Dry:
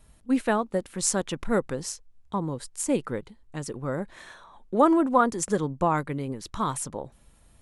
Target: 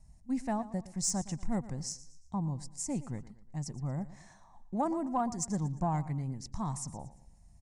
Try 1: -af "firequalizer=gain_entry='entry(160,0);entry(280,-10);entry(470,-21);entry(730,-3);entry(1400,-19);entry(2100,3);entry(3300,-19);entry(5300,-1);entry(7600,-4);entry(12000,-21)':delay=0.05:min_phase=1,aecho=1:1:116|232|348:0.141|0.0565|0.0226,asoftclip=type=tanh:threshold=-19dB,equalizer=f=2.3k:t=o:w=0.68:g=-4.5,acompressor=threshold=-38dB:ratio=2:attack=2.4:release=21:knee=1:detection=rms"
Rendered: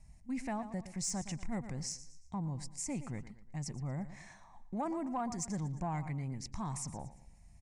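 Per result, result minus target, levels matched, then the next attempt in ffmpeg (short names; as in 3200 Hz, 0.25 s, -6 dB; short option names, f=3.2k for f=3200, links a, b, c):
compressor: peak gain reduction +7.5 dB; 2000 Hz band +6.0 dB
-af "firequalizer=gain_entry='entry(160,0);entry(280,-10);entry(470,-21);entry(730,-3);entry(1400,-19);entry(2100,3);entry(3300,-19);entry(5300,-1);entry(7600,-4);entry(12000,-21)':delay=0.05:min_phase=1,aecho=1:1:116|232|348:0.141|0.0565|0.0226,asoftclip=type=tanh:threshold=-19dB,equalizer=f=2.3k:t=o:w=0.68:g=-4.5"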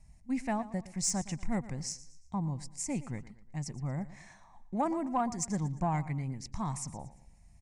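2000 Hz band +5.5 dB
-af "firequalizer=gain_entry='entry(160,0);entry(280,-10);entry(470,-21);entry(730,-3);entry(1400,-19);entry(2100,3);entry(3300,-19);entry(5300,-1);entry(7600,-4);entry(12000,-21)':delay=0.05:min_phase=1,aecho=1:1:116|232|348:0.141|0.0565|0.0226,asoftclip=type=tanh:threshold=-19dB,equalizer=f=2.3k:t=o:w=0.68:g=-16"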